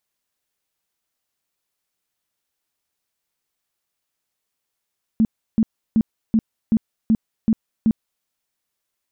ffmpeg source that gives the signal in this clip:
-f lavfi -i "aevalsrc='0.251*sin(2*PI*222*mod(t,0.38))*lt(mod(t,0.38),11/222)':d=3.04:s=44100"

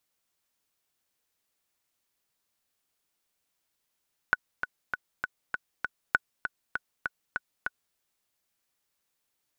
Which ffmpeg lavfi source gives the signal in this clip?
-f lavfi -i "aevalsrc='pow(10,(-8-8.5*gte(mod(t,6*60/198),60/198))/20)*sin(2*PI*1480*mod(t,60/198))*exp(-6.91*mod(t,60/198)/0.03)':d=3.63:s=44100"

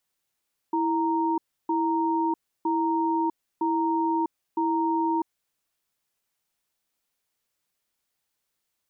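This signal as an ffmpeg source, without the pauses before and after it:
-f lavfi -i "aevalsrc='0.0596*(sin(2*PI*328*t)+sin(2*PI*930*t))*clip(min(mod(t,0.96),0.65-mod(t,0.96))/0.005,0,1)':d=4.59:s=44100"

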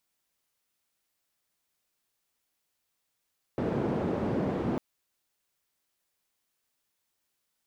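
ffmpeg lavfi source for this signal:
-f lavfi -i "anoisesrc=c=white:d=1.2:r=44100:seed=1,highpass=f=120,lowpass=f=370,volume=-5.8dB"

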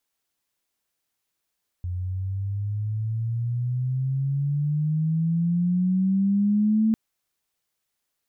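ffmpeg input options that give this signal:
-f lavfi -i "aevalsrc='pow(10,(-17+9*(t/5.1-1))/20)*sin(2*PI*88.4*5.1/(16*log(2)/12)*(exp(16*log(2)/12*t/5.1)-1))':d=5.1:s=44100"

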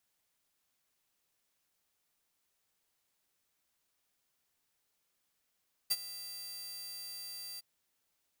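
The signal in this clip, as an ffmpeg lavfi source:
-f lavfi -i "aevalsrc='0.0668*(2*mod(4680*t,1)-1)':d=1.711:s=44100,afade=t=in:d=0.015,afade=t=out:st=0.015:d=0.04:silence=0.15,afade=t=out:st=1.69:d=0.021"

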